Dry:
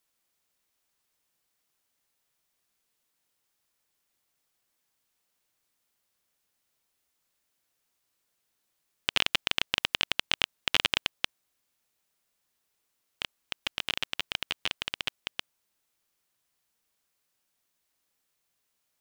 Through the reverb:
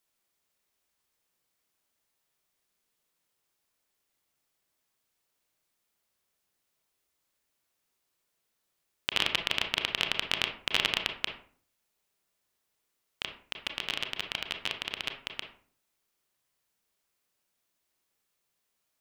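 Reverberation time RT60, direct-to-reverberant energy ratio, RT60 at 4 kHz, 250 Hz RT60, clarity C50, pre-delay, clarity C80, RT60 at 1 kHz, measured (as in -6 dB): 0.50 s, 4.0 dB, 0.30 s, 0.60 s, 7.5 dB, 28 ms, 13.0 dB, 0.45 s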